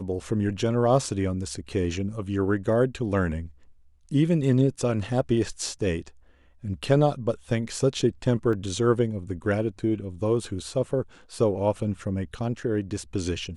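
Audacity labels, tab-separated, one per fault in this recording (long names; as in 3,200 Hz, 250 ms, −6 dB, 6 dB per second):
8.530000	8.530000	drop-out 2 ms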